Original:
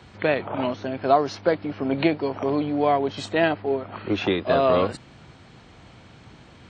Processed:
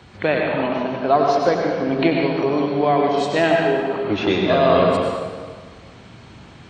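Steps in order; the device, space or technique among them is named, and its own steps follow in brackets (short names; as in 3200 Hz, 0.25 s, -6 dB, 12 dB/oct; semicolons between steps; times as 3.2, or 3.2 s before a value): 0.61–1.15 air absorption 120 m; stairwell (reverb RT60 1.6 s, pre-delay 86 ms, DRR -0.5 dB); gain +2 dB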